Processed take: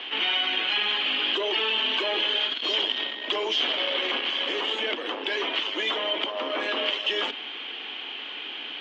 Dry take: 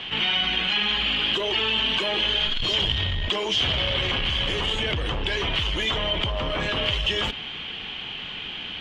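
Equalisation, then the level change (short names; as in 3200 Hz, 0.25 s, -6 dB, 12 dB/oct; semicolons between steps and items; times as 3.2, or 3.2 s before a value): steep high-pass 260 Hz 48 dB/oct; air absorption 160 m; high shelf 7400 Hz +8.5 dB; 0.0 dB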